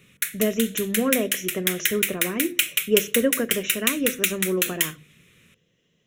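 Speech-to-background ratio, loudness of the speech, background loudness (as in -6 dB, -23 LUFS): -2.0 dB, -26.5 LUFS, -24.5 LUFS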